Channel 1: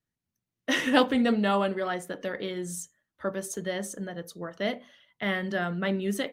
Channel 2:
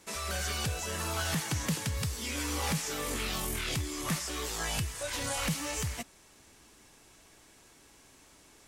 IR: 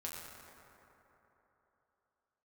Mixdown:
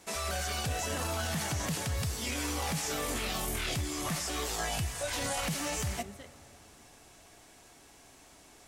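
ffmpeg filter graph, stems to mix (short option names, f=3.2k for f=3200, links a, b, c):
-filter_complex "[0:a]volume=-19.5dB[a];[1:a]equalizer=f=710:t=o:w=0.28:g=8,volume=0.5dB,asplit=2[b][c];[c]volume=-14dB[d];[2:a]atrim=start_sample=2205[e];[d][e]afir=irnorm=-1:irlink=0[f];[a][b][f]amix=inputs=3:normalize=0,alimiter=level_in=0.5dB:limit=-24dB:level=0:latency=1:release=20,volume=-0.5dB"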